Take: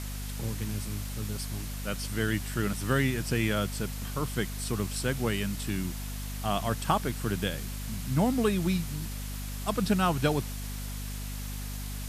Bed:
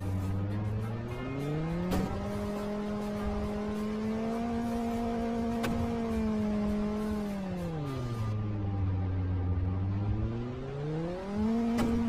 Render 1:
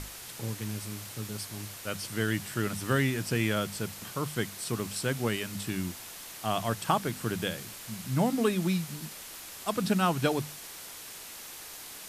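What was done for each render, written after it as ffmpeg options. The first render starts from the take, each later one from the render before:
-af "bandreject=f=50:t=h:w=6,bandreject=f=100:t=h:w=6,bandreject=f=150:t=h:w=6,bandreject=f=200:t=h:w=6,bandreject=f=250:t=h:w=6"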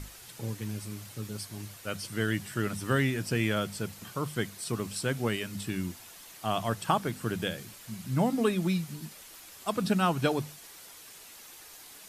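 -af "afftdn=nr=7:nf=-45"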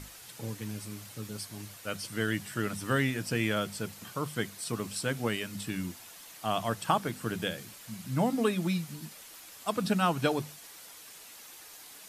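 -af "lowshelf=f=96:g=-8,bandreject=f=380:w=12"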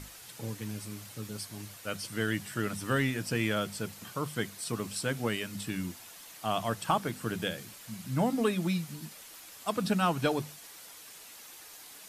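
-af "asoftclip=type=tanh:threshold=-14dB"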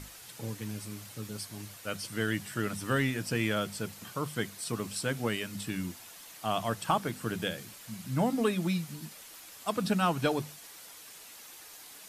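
-af anull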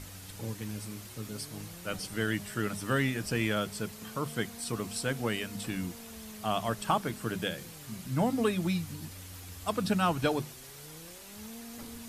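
-filter_complex "[1:a]volume=-17dB[a];[0:a][a]amix=inputs=2:normalize=0"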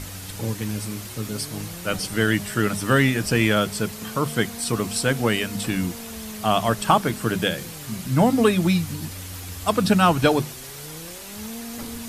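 -af "volume=10.5dB"

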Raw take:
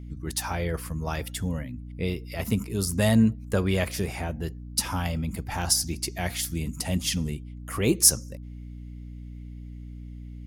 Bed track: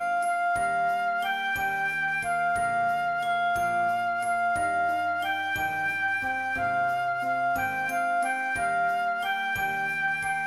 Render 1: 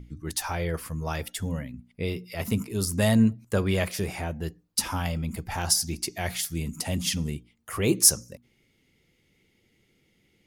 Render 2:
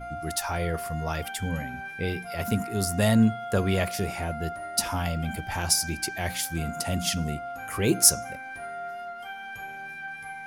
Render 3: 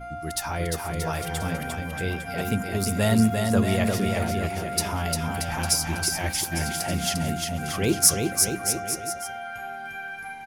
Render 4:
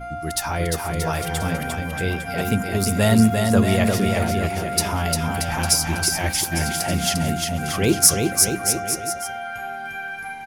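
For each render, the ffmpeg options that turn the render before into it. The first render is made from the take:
-af "bandreject=f=60:t=h:w=6,bandreject=f=120:t=h:w=6,bandreject=f=180:t=h:w=6,bandreject=f=240:t=h:w=6,bandreject=f=300:t=h:w=6"
-filter_complex "[1:a]volume=-10.5dB[a];[0:a][a]amix=inputs=2:normalize=0"
-af "aecho=1:1:350|630|854|1033|1177:0.631|0.398|0.251|0.158|0.1"
-af "volume=4.5dB,alimiter=limit=-1dB:level=0:latency=1"

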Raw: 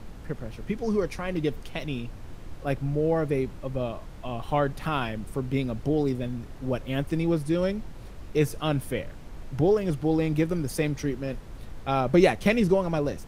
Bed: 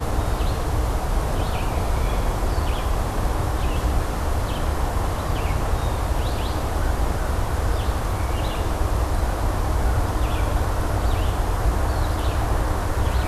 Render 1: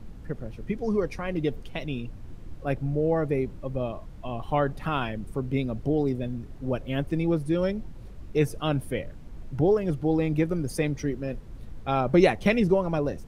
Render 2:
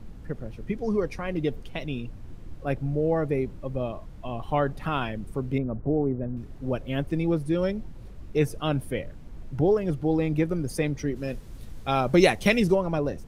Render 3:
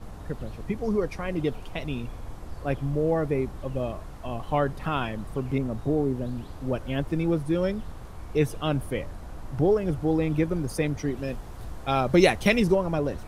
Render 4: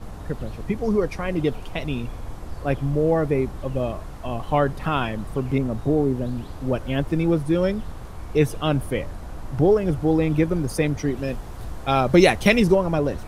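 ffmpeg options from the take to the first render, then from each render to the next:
-af "afftdn=nr=8:nf=-42"
-filter_complex "[0:a]asettb=1/sr,asplit=3[a][b][c];[a]atrim=end=5.584[d];[b]atrim=start=5.58:end=6.37,asetpts=PTS-STARTPTS,afade=t=in:d=0.004:c=qsin,afade=t=out:st=0.786:d=0.004:c=qsin,lowpass=f=1.5k:w=0.5412,lowpass=f=1.5k:w=1.3066[e];[c]atrim=start=6.366[f];[d][e]acrossfade=d=0.004:c1=hsin:c2=qsin[g];[g][f]acrossfade=d=0.004:c1=qsin:c2=hsin,asplit=3[h][i][j];[h]afade=t=out:st=11.15:d=0.02[k];[i]highshelf=f=3.3k:g=11.5,afade=t=in:st=11.15:d=0.02,afade=t=out:st=12.74:d=0.02[l];[j]afade=t=in:st=12.74:d=0.02[m];[k][l][m]amix=inputs=3:normalize=0"
-filter_complex "[1:a]volume=-20.5dB[a];[0:a][a]amix=inputs=2:normalize=0"
-af "volume=4.5dB,alimiter=limit=-3dB:level=0:latency=1"

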